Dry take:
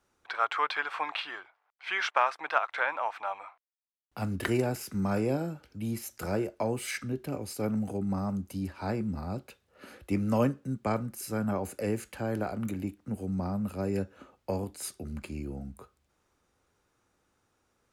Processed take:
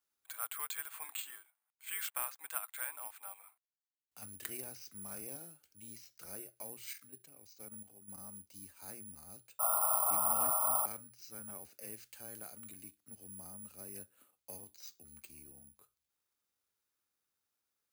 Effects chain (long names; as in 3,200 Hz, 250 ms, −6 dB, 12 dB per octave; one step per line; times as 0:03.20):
high-pass filter 43 Hz 6 dB per octave
first-order pre-emphasis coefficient 0.9
mains-hum notches 60/120 Hz
0:06.93–0:08.18: output level in coarse steps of 10 dB
0:09.59–0:10.86: sound drawn into the spectrogram noise 590–1,400 Hz −33 dBFS
0:11.91–0:13.28: high-shelf EQ 4,100 Hz +6.5 dB
bad sample-rate conversion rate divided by 4×, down filtered, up zero stuff
level −4.5 dB